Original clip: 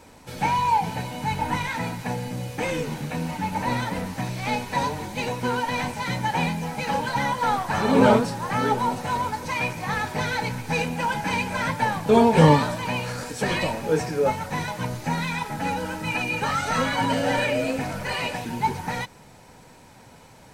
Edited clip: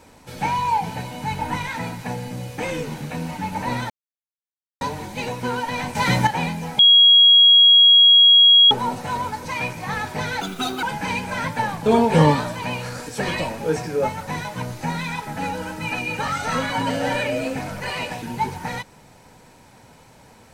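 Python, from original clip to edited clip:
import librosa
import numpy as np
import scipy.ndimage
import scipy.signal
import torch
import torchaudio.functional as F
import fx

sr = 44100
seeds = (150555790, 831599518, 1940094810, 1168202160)

y = fx.edit(x, sr, fx.silence(start_s=3.9, length_s=0.91),
    fx.clip_gain(start_s=5.95, length_s=0.32, db=8.5),
    fx.bleep(start_s=6.79, length_s=1.92, hz=3300.0, db=-8.0),
    fx.speed_span(start_s=10.41, length_s=0.65, speed=1.55), tone=tone)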